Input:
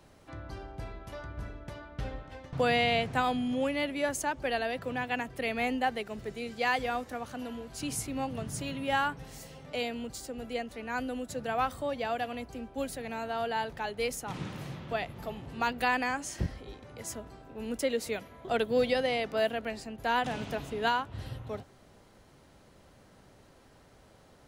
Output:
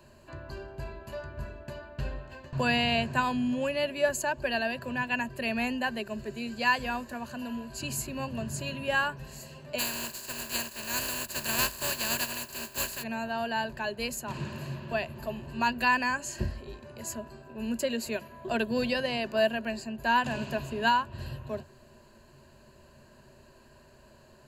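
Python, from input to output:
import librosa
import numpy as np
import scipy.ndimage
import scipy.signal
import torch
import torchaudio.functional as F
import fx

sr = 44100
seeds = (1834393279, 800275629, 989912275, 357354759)

y = fx.spec_flatten(x, sr, power=0.23, at=(9.78, 13.02), fade=0.02)
y = fx.ripple_eq(y, sr, per_octave=1.4, db=13)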